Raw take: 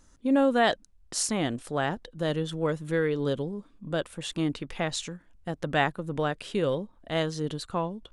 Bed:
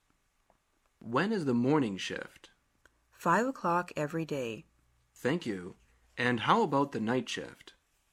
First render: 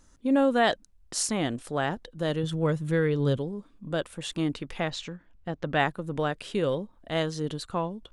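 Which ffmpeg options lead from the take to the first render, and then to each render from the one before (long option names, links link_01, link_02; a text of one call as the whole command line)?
ffmpeg -i in.wav -filter_complex "[0:a]asettb=1/sr,asplit=3[link_01][link_02][link_03];[link_01]atrim=end=2.434[link_04];[link_02]atrim=start=2.43:end=3.37,asetpts=PTS-STARTPTS,afade=type=in:duration=0.004:curve=qsin,afade=type=out:start_time=0.936:duration=0.004:curve=qsin,equalizer=frequency=120:width=1.5:gain=10[link_05];[link_03]atrim=start=3.366[link_06];[link_04][link_05]acrossfade=duration=0.004:curve1=hsin:curve2=qsin[link_07];[link_07][link_06]acrossfade=duration=0.004:curve1=qsin:curve2=hsin,asplit=3[link_08][link_09][link_10];[link_08]afade=type=out:start_time=4.89:duration=0.02[link_11];[link_09]lowpass=4400,afade=type=in:start_time=4.89:duration=0.02,afade=type=out:start_time=5.78:duration=0.02[link_12];[link_10]afade=type=in:start_time=5.78:duration=0.02[link_13];[link_11][link_12][link_13]amix=inputs=3:normalize=0" out.wav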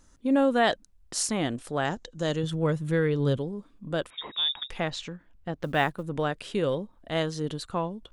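ffmpeg -i in.wav -filter_complex "[0:a]asettb=1/sr,asplit=3[link_01][link_02][link_03];[link_01]atrim=end=1.854[link_04];[link_02]atrim=start=1.85:end=2.45,asetpts=PTS-STARTPTS,afade=type=in:duration=0.004:curve=qsin,afade=type=out:start_time=0.596:duration=0.004:curve=qsin,lowpass=frequency=6800:width_type=q:width=4.6[link_05];[link_03]atrim=start=2.446[link_06];[link_04][link_05]acrossfade=duration=0.004:curve1=hsin:curve2=qsin[link_07];[link_07][link_06]acrossfade=duration=0.004:curve1=qsin:curve2=hsin,asettb=1/sr,asplit=3[link_08][link_09][link_10];[link_08]atrim=end=4.104[link_11];[link_09]atrim=start=4.1:end=4.7,asetpts=PTS-STARTPTS,afade=type=in:duration=0.004:curve=qsin,afade=type=out:start_time=0.596:duration=0.004:curve=qsin,lowpass=frequency=3200:width_type=q:width=0.5098,lowpass=frequency=3200:width_type=q:width=0.6013,lowpass=frequency=3200:width_type=q:width=0.9,lowpass=frequency=3200:width_type=q:width=2.563,afreqshift=-3800[link_12];[link_10]atrim=start=4.696[link_13];[link_11][link_12]acrossfade=duration=0.004:curve1=hsin:curve2=qsin[link_14];[link_14][link_13]acrossfade=duration=0.004:curve1=qsin:curve2=hsin,asettb=1/sr,asplit=3[link_15][link_16][link_17];[link_15]atrim=end=5.604[link_18];[link_16]atrim=start=5.6:end=6.03,asetpts=PTS-STARTPTS,afade=type=in:duration=0.004:curve=qsin,afade=type=out:start_time=0.426:duration=0.004:curve=qsin,acrusher=bits=8:mode=log:mix=0:aa=0.000001[link_19];[link_17]atrim=start=6.026[link_20];[link_18][link_19]acrossfade=duration=0.004:curve1=hsin:curve2=qsin[link_21];[link_21][link_20]acrossfade=duration=0.004:curve1=qsin:curve2=hsin" out.wav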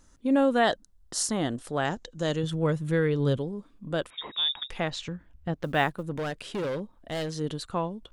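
ffmpeg -i in.wav -filter_complex "[0:a]asettb=1/sr,asplit=3[link_01][link_02][link_03];[link_01]atrim=end=0.644[link_04];[link_02]atrim=start=0.64:end=1.63,asetpts=PTS-STARTPTS,afade=type=in:duration=0.004:curve=qsin,afade=type=out:start_time=0.986:duration=0.004:curve=qsin,equalizer=frequency=2400:width=4.6:gain=-11[link_05];[link_03]atrim=start=1.626[link_06];[link_04][link_05]acrossfade=duration=0.004:curve1=hsin:curve2=qsin[link_07];[link_07][link_06]acrossfade=duration=0.004:curve1=qsin:curve2=hsin,asettb=1/sr,asplit=3[link_08][link_09][link_10];[link_08]atrim=end=5.084[link_11];[link_09]atrim=start=5.08:end=5.54,asetpts=PTS-STARTPTS,afade=type=in:duration=0.004:curve=qsin,afade=type=out:start_time=0.456:duration=0.004:curve=qsin,equalizer=frequency=65:width_type=o:width=2.3:gain=11.5[link_12];[link_10]atrim=start=5.536[link_13];[link_11][link_12]acrossfade=duration=0.004:curve1=hsin:curve2=qsin[link_14];[link_14][link_13]acrossfade=duration=0.004:curve1=qsin:curve2=hsin,asettb=1/sr,asplit=3[link_15][link_16][link_17];[link_15]atrim=end=6.114[link_18];[link_16]atrim=start=6.11:end=7.37,asetpts=PTS-STARTPTS,afade=type=in:duration=0.004:curve=qsin,afade=type=out:start_time=1.256:duration=0.004:curve=qsin,asoftclip=type=hard:threshold=-27.5dB[link_19];[link_17]atrim=start=7.366[link_20];[link_18][link_19]acrossfade=duration=0.004:curve1=hsin:curve2=qsin[link_21];[link_21][link_20]acrossfade=duration=0.004:curve1=qsin:curve2=hsin" out.wav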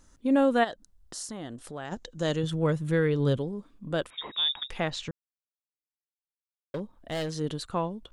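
ffmpeg -i in.wav -filter_complex "[0:a]asplit=3[link_01][link_02][link_03];[link_01]afade=type=out:start_time=0.63:duration=0.02[link_04];[link_02]acompressor=threshold=-42dB:ratio=2:attack=3.2:release=140:knee=1:detection=peak,afade=type=in:start_time=0.63:duration=0.02,afade=type=out:start_time=1.91:duration=0.02[link_05];[link_03]afade=type=in:start_time=1.91:duration=0.02[link_06];[link_04][link_05][link_06]amix=inputs=3:normalize=0,asplit=3[link_07][link_08][link_09];[link_07]atrim=end=5.11,asetpts=PTS-STARTPTS,afade=type=out:start_time=5.106:duration=0.004:curve=hsin[link_10];[link_08]atrim=start=5.11:end=6.74,asetpts=PTS-STARTPTS,volume=0[link_11];[link_09]atrim=start=6.74,asetpts=PTS-STARTPTS,afade=type=in:duration=0.004:curve=hsin[link_12];[link_10][link_11][link_12]concat=n=3:v=0:a=1" out.wav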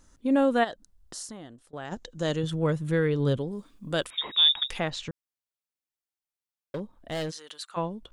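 ffmpeg -i in.wav -filter_complex "[0:a]asettb=1/sr,asplit=3[link_01][link_02][link_03];[link_01]atrim=end=3.514[link_04];[link_02]atrim=start=3.51:end=4.79,asetpts=PTS-STARTPTS,afade=type=in:duration=0.004:curve=qsin,afade=type=out:start_time=1.276:duration=0.004:curve=qsin,highshelf=frequency=2400:gain=10.5[link_05];[link_03]atrim=start=4.786[link_06];[link_04][link_05]acrossfade=duration=0.004:curve1=hsin:curve2=qsin[link_07];[link_07][link_06]acrossfade=duration=0.004:curve1=qsin:curve2=hsin,asplit=3[link_08][link_09][link_10];[link_08]afade=type=out:start_time=7.3:duration=0.02[link_11];[link_09]highpass=1200,afade=type=in:start_time=7.3:duration=0.02,afade=type=out:start_time=7.76:duration=0.02[link_12];[link_10]afade=type=in:start_time=7.76:duration=0.02[link_13];[link_11][link_12][link_13]amix=inputs=3:normalize=0,asplit=2[link_14][link_15];[link_14]atrim=end=1.73,asetpts=PTS-STARTPTS,afade=type=out:start_time=1.15:duration=0.58:silence=0.0668344[link_16];[link_15]atrim=start=1.73,asetpts=PTS-STARTPTS,afade=type=in:duration=0.004:curve=hsin:silence=0.0668344[link_17];[link_16][link_17]concat=n=2:v=0:a=1" out.wav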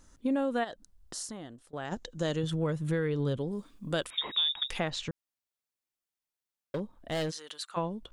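ffmpeg -i in.wav -af "acompressor=threshold=-26dB:ratio=6" out.wav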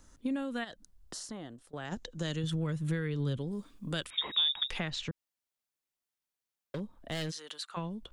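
ffmpeg -i in.wav -filter_complex "[0:a]acrossover=split=260|1400|5500[link_01][link_02][link_03][link_04];[link_02]acompressor=threshold=-41dB:ratio=6[link_05];[link_04]alimiter=level_in=13dB:limit=-24dB:level=0:latency=1:release=294,volume=-13dB[link_06];[link_01][link_05][link_03][link_06]amix=inputs=4:normalize=0" out.wav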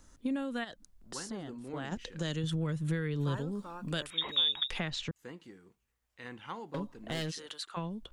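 ffmpeg -i in.wav -i bed.wav -filter_complex "[1:a]volume=-16.5dB[link_01];[0:a][link_01]amix=inputs=2:normalize=0" out.wav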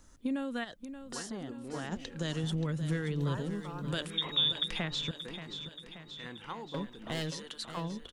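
ffmpeg -i in.wav -af "aecho=1:1:579|1158|1737|2316|2895|3474|4053:0.282|0.166|0.0981|0.0579|0.0342|0.0201|0.0119" out.wav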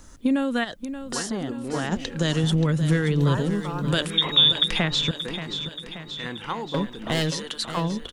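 ffmpeg -i in.wav -af "volume=11.5dB" out.wav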